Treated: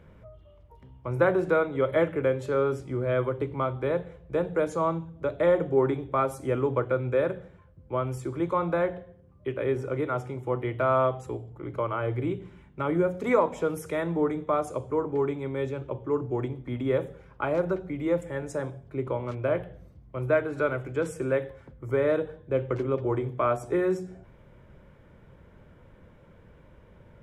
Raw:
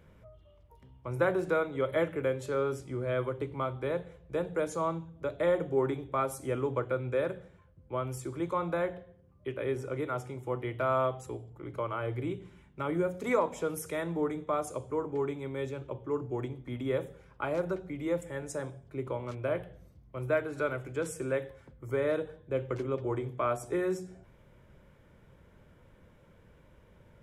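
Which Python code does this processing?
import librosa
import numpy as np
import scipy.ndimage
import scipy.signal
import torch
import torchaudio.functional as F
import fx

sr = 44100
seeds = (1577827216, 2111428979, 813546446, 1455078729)

y = fx.high_shelf(x, sr, hz=4100.0, db=-10.5)
y = F.gain(torch.from_numpy(y), 5.5).numpy()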